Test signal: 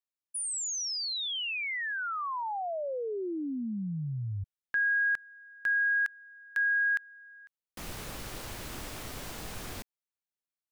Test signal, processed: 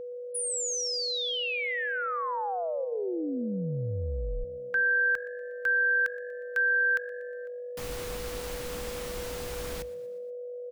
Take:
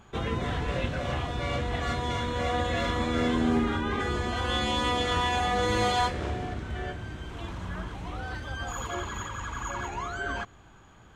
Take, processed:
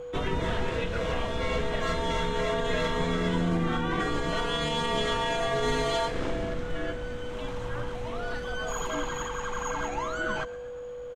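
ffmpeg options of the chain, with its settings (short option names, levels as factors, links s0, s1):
-filter_complex "[0:a]alimiter=limit=0.1:level=0:latency=1:release=110,afreqshift=-65,aeval=exprs='val(0)+0.0126*sin(2*PI*490*n/s)':c=same,asplit=5[s0][s1][s2][s3][s4];[s1]adelay=120,afreqshift=48,volume=0.1[s5];[s2]adelay=240,afreqshift=96,volume=0.0537[s6];[s3]adelay=360,afreqshift=144,volume=0.0292[s7];[s4]adelay=480,afreqshift=192,volume=0.0157[s8];[s0][s5][s6][s7][s8]amix=inputs=5:normalize=0,volume=1.26"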